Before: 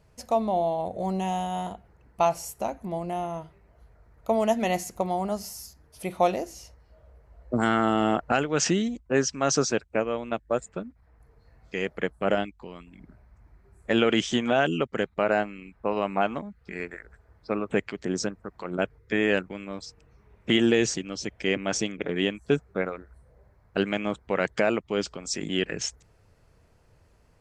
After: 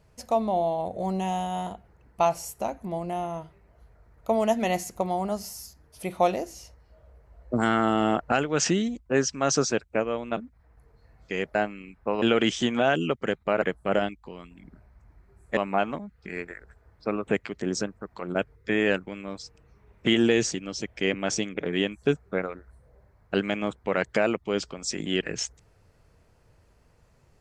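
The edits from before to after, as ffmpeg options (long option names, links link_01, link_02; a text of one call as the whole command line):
ffmpeg -i in.wav -filter_complex "[0:a]asplit=6[link_01][link_02][link_03][link_04][link_05][link_06];[link_01]atrim=end=10.372[link_07];[link_02]atrim=start=10.798:end=11.982[link_08];[link_03]atrim=start=15.328:end=16.002[link_09];[link_04]atrim=start=13.928:end=15.332[link_10];[link_05]atrim=start=11.978:end=13.932[link_11];[link_06]atrim=start=15.998[link_12];[link_07][link_08]acrossfade=duration=0.004:curve1=hsin:curve2=hsin[link_13];[link_13][link_09]acrossfade=duration=0.004:curve1=hsin:curve2=hsin[link_14];[link_14][link_10]acrossfade=duration=0.004:curve1=hsin:curve2=hsin[link_15];[link_15][link_11]acrossfade=duration=0.004:curve1=hsin:curve2=hsin[link_16];[link_16][link_12]acrossfade=duration=0.004:curve1=hsin:curve2=hsin" out.wav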